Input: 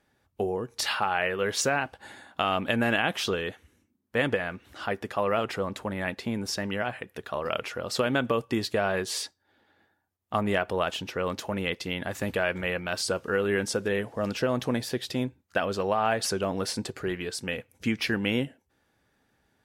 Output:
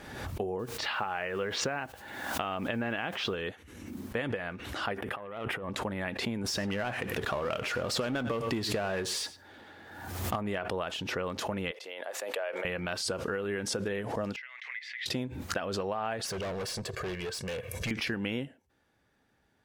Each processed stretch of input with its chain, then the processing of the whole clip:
0.59–3.35 s: low-pass 3.3 kHz + word length cut 10-bit, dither triangular
4.98–5.70 s: self-modulated delay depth 0.11 ms + high-order bell 5.4 kHz -13.5 dB 1.1 oct + compressor with a negative ratio -37 dBFS
6.44–10.36 s: power-law waveshaper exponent 0.7 + delay 98 ms -19 dB
11.71–12.65 s: ladder high-pass 460 Hz, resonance 50% + tape noise reduction on one side only encoder only
14.36–15.06 s: ladder high-pass 2 kHz, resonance 90% + distance through air 170 m
16.27–17.91 s: comb 1.8 ms, depth 88% + overload inside the chain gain 31.5 dB
whole clip: compression, threshold -28 dBFS; treble shelf 8 kHz -5.5 dB; swell ahead of each attack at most 46 dB/s; trim -1.5 dB

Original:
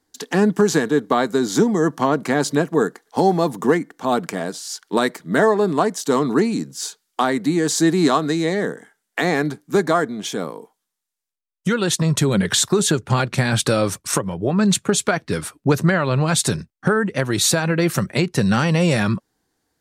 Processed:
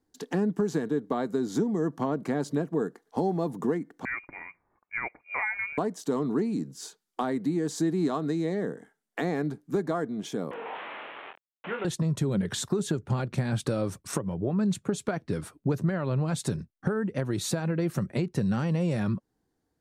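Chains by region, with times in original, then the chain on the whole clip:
4.05–5.78 s: frequency inversion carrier 2.6 kHz + upward expansion, over -31 dBFS
10.51–11.85 s: one-bit delta coder 16 kbps, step -21 dBFS + high-pass 590 Hz + doubling 24 ms -6 dB
whole clip: tilt shelf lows +6 dB, about 880 Hz; compression 2:1, threshold -20 dBFS; trim -8 dB

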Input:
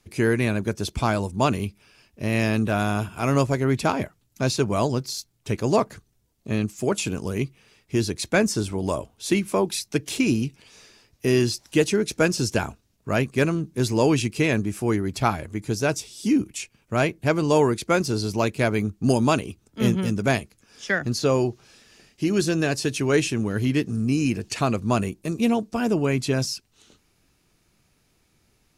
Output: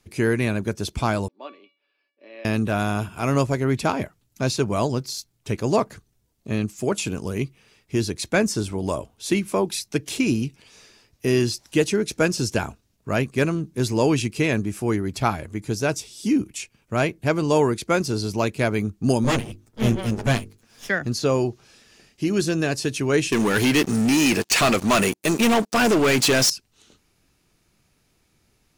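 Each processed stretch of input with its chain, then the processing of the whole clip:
1.28–2.45 s: Chebyshev band-pass 280–4200 Hz, order 4 + feedback comb 570 Hz, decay 0.37 s, mix 90%
19.24–20.89 s: comb filter that takes the minimum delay 8.6 ms + bass shelf 200 Hz +5 dB + hum notches 50/100/150/200/250/300/350/400/450 Hz
23.32–26.50 s: high-pass 750 Hz 6 dB/octave + waveshaping leveller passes 5
whole clip: none

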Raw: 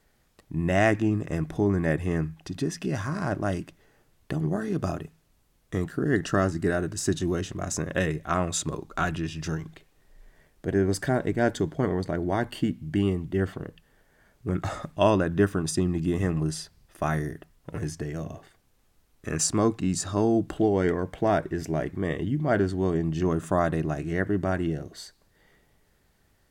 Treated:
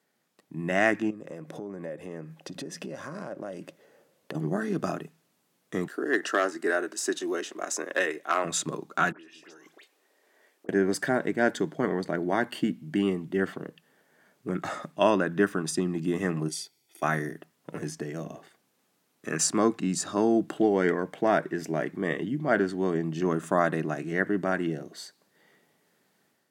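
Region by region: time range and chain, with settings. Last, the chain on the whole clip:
1.10–4.35 s: peaking EQ 530 Hz +14 dB 0.38 oct + compression 16:1, threshold -32 dBFS
5.87–8.45 s: high-pass 320 Hz 24 dB/octave + hard clipper -17.5 dBFS
9.12–10.69 s: high-pass 310 Hz 24 dB/octave + phase dispersion highs, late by 71 ms, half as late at 2 kHz + compression 10:1, threshold -47 dBFS
16.48–17.03 s: high-pass 300 Hz 6 dB/octave + static phaser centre 470 Hz, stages 4 + comb 0.9 ms, depth 80%
whole clip: dynamic bell 1.7 kHz, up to +5 dB, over -41 dBFS, Q 1.3; high-pass 170 Hz 24 dB/octave; level rider gain up to 6 dB; trim -6 dB

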